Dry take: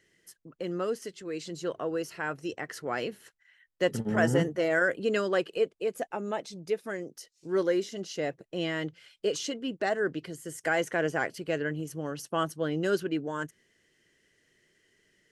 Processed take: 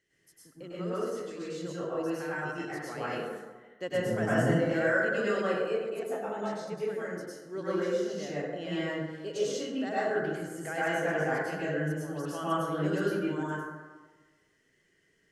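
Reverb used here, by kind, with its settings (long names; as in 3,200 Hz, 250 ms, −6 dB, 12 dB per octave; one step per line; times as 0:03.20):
dense smooth reverb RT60 1.3 s, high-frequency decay 0.4×, pre-delay 90 ms, DRR −9.5 dB
level −11 dB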